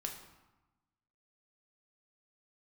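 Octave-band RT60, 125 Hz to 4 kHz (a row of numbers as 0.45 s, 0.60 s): 1.4 s, 1.3 s, 0.95 s, 1.2 s, 0.90 s, 0.70 s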